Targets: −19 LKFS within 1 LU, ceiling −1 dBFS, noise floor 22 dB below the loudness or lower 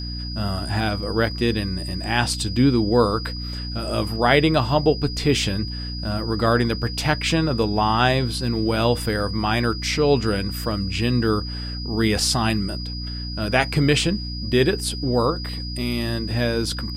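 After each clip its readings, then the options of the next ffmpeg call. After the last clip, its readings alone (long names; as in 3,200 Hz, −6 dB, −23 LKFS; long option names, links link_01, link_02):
mains hum 60 Hz; hum harmonics up to 300 Hz; level of the hum −28 dBFS; interfering tone 4,900 Hz; level of the tone −33 dBFS; integrated loudness −22.0 LKFS; sample peak −2.5 dBFS; target loudness −19.0 LKFS
→ -af "bandreject=frequency=60:width_type=h:width=4,bandreject=frequency=120:width_type=h:width=4,bandreject=frequency=180:width_type=h:width=4,bandreject=frequency=240:width_type=h:width=4,bandreject=frequency=300:width_type=h:width=4"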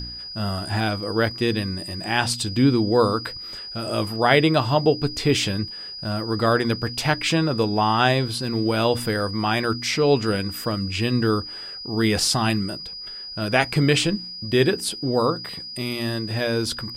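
mains hum none found; interfering tone 4,900 Hz; level of the tone −33 dBFS
→ -af "bandreject=frequency=4900:width=30"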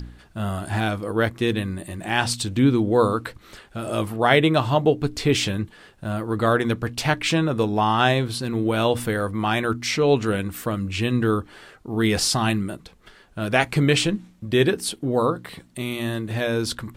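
interfering tone none found; integrated loudness −22.5 LKFS; sample peak −2.0 dBFS; target loudness −19.0 LKFS
→ -af "volume=3.5dB,alimiter=limit=-1dB:level=0:latency=1"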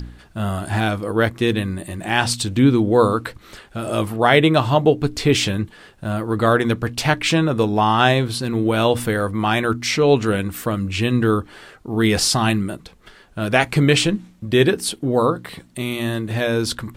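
integrated loudness −19.0 LKFS; sample peak −1.0 dBFS; background noise floor −49 dBFS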